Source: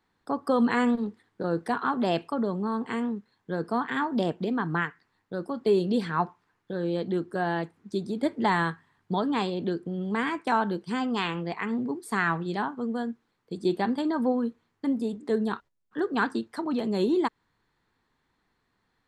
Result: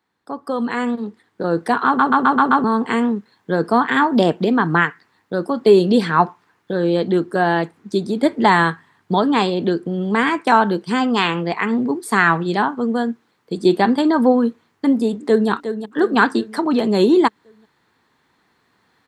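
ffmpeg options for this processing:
ffmpeg -i in.wav -filter_complex "[0:a]asplit=2[link_01][link_02];[link_02]afade=type=in:start_time=15.08:duration=0.01,afade=type=out:start_time=15.49:duration=0.01,aecho=0:1:360|720|1080|1440|1800|2160:0.334965|0.184231|0.101327|0.0557299|0.0306514|0.0168583[link_03];[link_01][link_03]amix=inputs=2:normalize=0,asplit=7[link_04][link_05][link_06][link_07][link_08][link_09][link_10];[link_04]atrim=end=1.992[link_11];[link_05]atrim=start=1.858:end=1.992[link_12];[link_06]atrim=start=1.858:end=1.992[link_13];[link_07]atrim=start=1.858:end=1.992[link_14];[link_08]atrim=start=1.858:end=1.992[link_15];[link_09]atrim=start=1.858:end=1.992[link_16];[link_10]atrim=start=2.638[link_17];[link_11][link_12]acrossfade=duration=0.004:curve1=hsin:curve2=hsin[link_18];[link_18][link_13]acrossfade=duration=0.004:curve1=hsin:curve2=hsin[link_19];[link_19][link_14]acrossfade=duration=0.004:curve1=hsin:curve2=hsin[link_20];[link_20][link_15]acrossfade=duration=0.004:curve1=hsin:curve2=hsin[link_21];[link_21][link_16]acrossfade=duration=0.004:curve1=hsin:curve2=hsin[link_22];[link_22][link_17]acrossfade=duration=0.004:curve1=hsin:curve2=hsin,highpass=61,lowshelf=frequency=100:gain=-10.5,dynaudnorm=framelen=150:gausssize=17:maxgain=13dB,volume=1dB" out.wav

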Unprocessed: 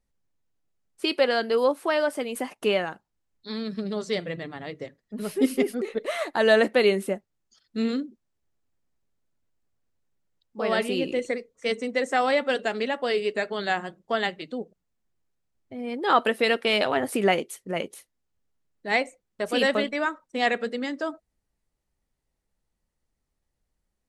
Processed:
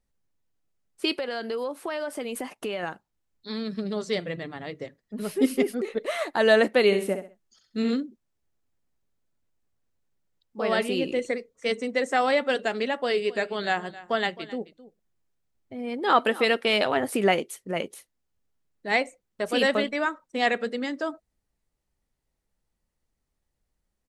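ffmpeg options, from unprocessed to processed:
ffmpeg -i in.wav -filter_complex "[0:a]asettb=1/sr,asplit=3[link_01][link_02][link_03];[link_01]atrim=end=1.164[link_04];[link_02]atrim=start=1.16:end=2.83,asetpts=PTS-STARTPTS,afade=type=in:duration=0.004:curve=qsin,afade=type=out:start_time=1.666:duration=0.004:curve=qsin,acompressor=threshold=-27dB:ratio=6:attack=3.2:release=140:knee=1:detection=peak[link_05];[link_03]atrim=start=2.826[link_06];[link_04][link_05]acrossfade=duration=0.004:curve1=hsin:curve2=qsin[link_07];[link_07][link_06]acrossfade=duration=0.004:curve1=qsin:curve2=hsin,asplit=3[link_08][link_09][link_10];[link_08]afade=type=out:start_time=6.91:duration=0.02[link_11];[link_09]aecho=1:1:65|130|195:0.398|0.115|0.0335,afade=type=in:start_time=6.91:duration=0.02,afade=type=out:start_time=7.94:duration=0.02[link_12];[link_10]afade=type=in:start_time=7.94:duration=0.02[link_13];[link_11][link_12][link_13]amix=inputs=3:normalize=0,asplit=3[link_14][link_15][link_16];[link_14]afade=type=out:start_time=13.24:duration=0.02[link_17];[link_15]aecho=1:1:264:0.126,afade=type=in:start_time=13.24:duration=0.02,afade=type=out:start_time=16.51:duration=0.02[link_18];[link_16]afade=type=in:start_time=16.51:duration=0.02[link_19];[link_17][link_18][link_19]amix=inputs=3:normalize=0" out.wav

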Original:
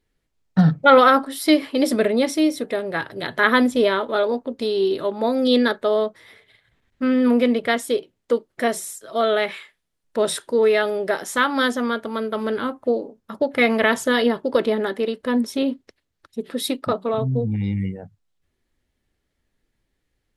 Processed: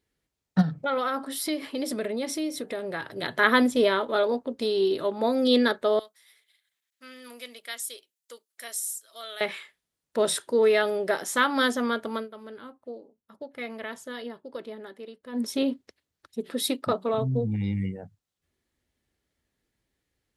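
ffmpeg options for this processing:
ffmpeg -i in.wav -filter_complex "[0:a]asplit=3[link_01][link_02][link_03];[link_01]afade=type=out:start_time=0.61:duration=0.02[link_04];[link_02]acompressor=threshold=-26dB:ratio=2.5:attack=3.2:release=140:knee=1:detection=peak,afade=type=in:start_time=0.61:duration=0.02,afade=type=out:start_time=3.09:duration=0.02[link_05];[link_03]afade=type=in:start_time=3.09:duration=0.02[link_06];[link_04][link_05][link_06]amix=inputs=3:normalize=0,asettb=1/sr,asplit=3[link_07][link_08][link_09];[link_07]atrim=end=5.994[link_10];[link_08]atrim=start=5.99:end=9.41,asetpts=PTS-STARTPTS,afade=type=in:duration=0.004:curve=qsin,afade=type=out:start_time=3.416:duration=0.004:curve=qsin,aderivative[link_11];[link_09]atrim=start=9.406[link_12];[link_10][link_11]acrossfade=duration=0.004:curve1=hsin:curve2=qsin[link_13];[link_13][link_12]acrossfade=duration=0.004:curve1=qsin:curve2=hsin,asplit=3[link_14][link_15][link_16];[link_14]atrim=end=12.28,asetpts=PTS-STARTPTS,afade=type=out:start_time=12.15:duration=0.13:silence=0.177828[link_17];[link_15]atrim=start=12.28:end=15.32,asetpts=PTS-STARTPTS,volume=-15dB[link_18];[link_16]atrim=start=15.32,asetpts=PTS-STARTPTS,afade=type=in:duration=0.13:silence=0.177828[link_19];[link_17][link_18][link_19]concat=n=3:v=0:a=1,highpass=49,bass=frequency=250:gain=-1,treble=frequency=4000:gain=3,volume=-3.5dB" out.wav

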